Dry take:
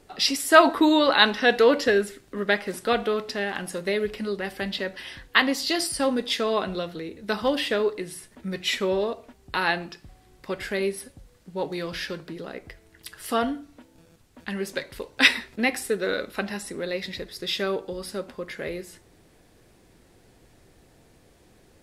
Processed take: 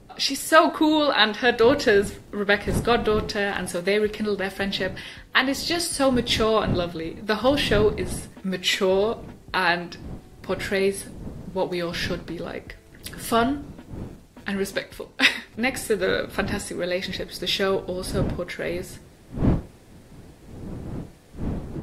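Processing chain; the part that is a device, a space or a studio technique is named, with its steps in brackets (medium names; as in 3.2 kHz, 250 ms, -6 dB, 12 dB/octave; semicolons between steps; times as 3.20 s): smartphone video outdoors (wind noise -38 dBFS; level rider gain up to 5 dB; trim -1 dB; AAC 64 kbps 48 kHz)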